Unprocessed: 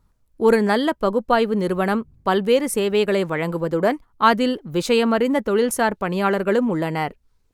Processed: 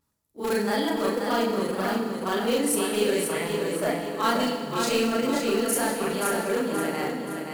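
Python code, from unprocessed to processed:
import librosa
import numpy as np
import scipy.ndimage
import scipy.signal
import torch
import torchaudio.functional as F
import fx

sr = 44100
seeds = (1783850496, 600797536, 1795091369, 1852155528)

p1 = fx.frame_reverse(x, sr, frame_ms=96.0)
p2 = scipy.signal.sosfilt(scipy.signal.butter(2, 94.0, 'highpass', fs=sr, output='sos'), p1)
p3 = fx.high_shelf(p2, sr, hz=3500.0, db=11.5)
p4 = fx.wow_flutter(p3, sr, seeds[0], rate_hz=2.1, depth_cents=28.0)
p5 = (np.mod(10.0 ** (13.0 / 20.0) * p4 + 1.0, 2.0) - 1.0) / 10.0 ** (13.0 / 20.0)
p6 = p4 + (p5 * librosa.db_to_amplitude(-12.0))
p7 = fx.quant_float(p6, sr, bits=4)
p8 = p7 + fx.echo_feedback(p7, sr, ms=527, feedback_pct=43, wet_db=-5.5, dry=0)
p9 = fx.rev_fdn(p8, sr, rt60_s=1.7, lf_ratio=1.5, hf_ratio=0.9, size_ms=21.0, drr_db=3.5)
y = p9 * librosa.db_to_amplitude(-8.0)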